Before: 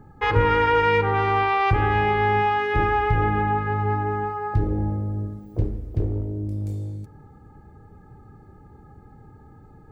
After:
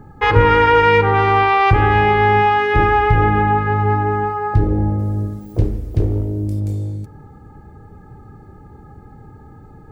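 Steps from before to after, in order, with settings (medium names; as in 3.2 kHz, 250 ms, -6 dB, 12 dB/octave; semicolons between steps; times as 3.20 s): 4.99–6.60 s: treble shelf 2.8 kHz +9 dB; trim +7 dB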